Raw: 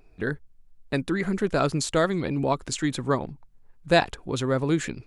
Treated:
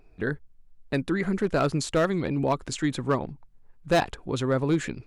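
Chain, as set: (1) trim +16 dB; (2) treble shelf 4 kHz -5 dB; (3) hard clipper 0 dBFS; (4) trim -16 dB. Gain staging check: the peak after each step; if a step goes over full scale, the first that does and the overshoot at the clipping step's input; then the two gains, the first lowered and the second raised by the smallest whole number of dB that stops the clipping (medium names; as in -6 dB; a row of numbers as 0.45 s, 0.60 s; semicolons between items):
+10.5 dBFS, +9.5 dBFS, 0.0 dBFS, -16.0 dBFS; step 1, 9.5 dB; step 1 +6 dB, step 4 -6 dB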